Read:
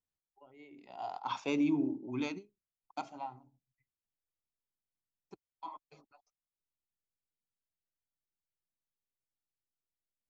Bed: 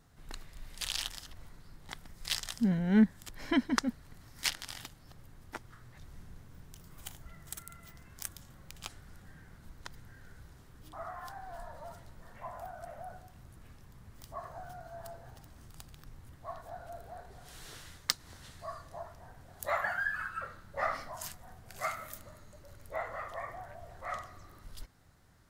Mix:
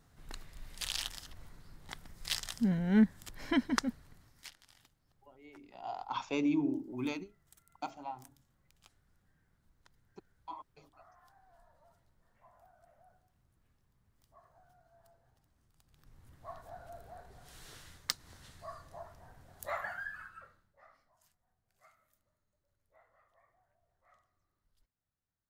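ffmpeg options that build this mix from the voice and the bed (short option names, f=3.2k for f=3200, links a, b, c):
-filter_complex "[0:a]adelay=4850,volume=-0.5dB[a];[1:a]volume=14dB,afade=t=out:st=3.84:d=0.64:silence=0.125893,afade=t=in:st=15.83:d=0.64:silence=0.16788,afade=t=out:st=19.5:d=1.27:silence=0.0530884[b];[a][b]amix=inputs=2:normalize=0"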